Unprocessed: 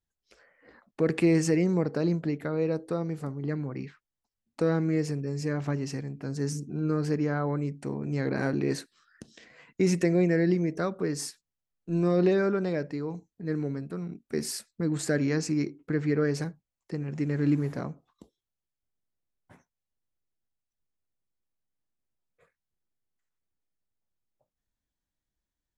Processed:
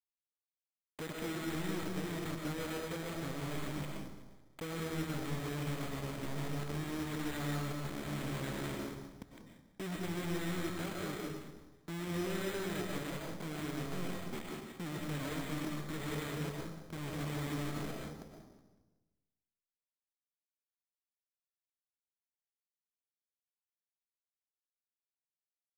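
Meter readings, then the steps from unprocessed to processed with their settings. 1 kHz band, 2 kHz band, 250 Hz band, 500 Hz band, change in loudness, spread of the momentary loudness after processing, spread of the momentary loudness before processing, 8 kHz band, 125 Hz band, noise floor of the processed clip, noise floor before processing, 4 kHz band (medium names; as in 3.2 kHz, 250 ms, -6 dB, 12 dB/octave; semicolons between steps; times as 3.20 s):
-4.0 dB, -5.5 dB, -12.0 dB, -13.5 dB, -11.0 dB, 10 LU, 12 LU, -7.5 dB, -10.5 dB, under -85 dBFS, under -85 dBFS, -1.5 dB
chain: bass shelf 180 Hz +7 dB; rotary cabinet horn 6.7 Hz; compression 2.5:1, threshold -40 dBFS, peak gain reduction 15.5 dB; companded quantiser 2-bit; dynamic bell 2.4 kHz, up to +4 dB, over -50 dBFS, Q 1.5; vibrato 3.6 Hz 32 cents; saturation -35.5 dBFS, distortion -14 dB; on a send: frequency-shifting echo 185 ms, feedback 37%, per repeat -81 Hz, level -14 dB; on the sum: algorithmic reverb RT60 1.1 s, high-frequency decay 0.35×, pre-delay 75 ms, DRR -0.5 dB; careless resampling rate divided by 8×, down filtered, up hold; trim -2 dB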